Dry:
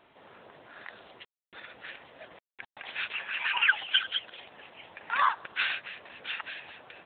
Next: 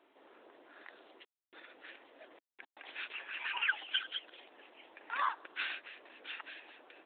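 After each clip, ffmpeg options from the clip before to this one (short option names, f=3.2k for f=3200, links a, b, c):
-af "lowshelf=f=210:t=q:w=3:g=-13,volume=-9dB"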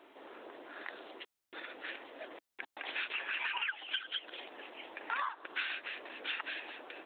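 -af "acompressor=threshold=-42dB:ratio=16,volume=9dB"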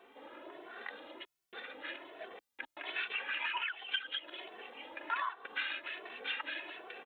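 -filter_complex "[0:a]asplit=2[a][b];[b]adelay=2.2,afreqshift=1.3[c];[a][c]amix=inputs=2:normalize=1,volume=3dB"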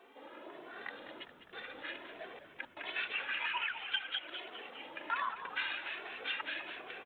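-filter_complex "[0:a]asplit=8[a][b][c][d][e][f][g][h];[b]adelay=203,afreqshift=-64,volume=-11dB[i];[c]adelay=406,afreqshift=-128,volume=-15.2dB[j];[d]adelay=609,afreqshift=-192,volume=-19.3dB[k];[e]adelay=812,afreqshift=-256,volume=-23.5dB[l];[f]adelay=1015,afreqshift=-320,volume=-27.6dB[m];[g]adelay=1218,afreqshift=-384,volume=-31.8dB[n];[h]adelay=1421,afreqshift=-448,volume=-35.9dB[o];[a][i][j][k][l][m][n][o]amix=inputs=8:normalize=0"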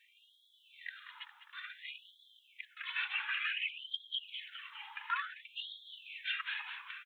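-af "afftfilt=real='re*gte(b*sr/1024,770*pow(3200/770,0.5+0.5*sin(2*PI*0.56*pts/sr)))':imag='im*gte(b*sr/1024,770*pow(3200/770,0.5+0.5*sin(2*PI*0.56*pts/sr)))':win_size=1024:overlap=0.75,volume=1dB"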